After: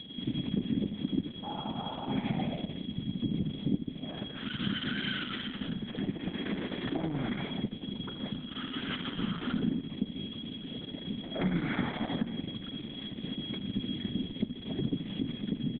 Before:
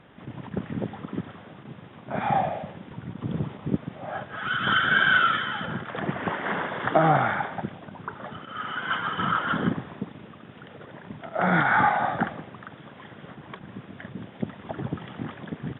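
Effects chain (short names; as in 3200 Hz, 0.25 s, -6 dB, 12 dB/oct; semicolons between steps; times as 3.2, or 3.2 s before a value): de-hum 78.44 Hz, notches 33; spectral repair 1.46–2.21, 490–1400 Hz after; EQ curve 120 Hz 0 dB, 260 Hz +10 dB, 590 Hz -8 dB, 840 Hz -15 dB, 1500 Hz -14 dB, 2300 Hz 0 dB, 4800 Hz +1 dB, 7200 Hz -23 dB; echo 79 ms -11 dB; whine 3300 Hz -39 dBFS; compressor 4:1, threshold -28 dBFS, peak gain reduction 14 dB; requantised 10-bit, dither none; vocal rider 2 s; high shelf 3300 Hz -5 dB; Opus 6 kbps 48000 Hz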